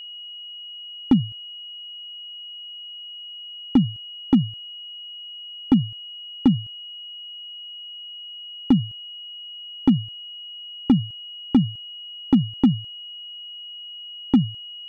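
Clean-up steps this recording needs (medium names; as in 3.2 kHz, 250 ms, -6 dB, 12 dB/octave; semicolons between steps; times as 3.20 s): clip repair -9 dBFS; band-stop 2.9 kHz, Q 30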